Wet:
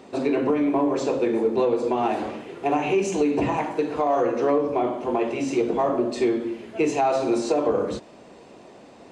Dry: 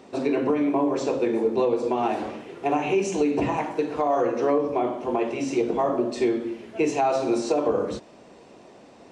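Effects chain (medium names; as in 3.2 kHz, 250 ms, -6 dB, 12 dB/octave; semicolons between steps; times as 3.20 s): band-stop 5.6 kHz, Q 15; in parallel at -11 dB: saturation -26.5 dBFS, distortion -8 dB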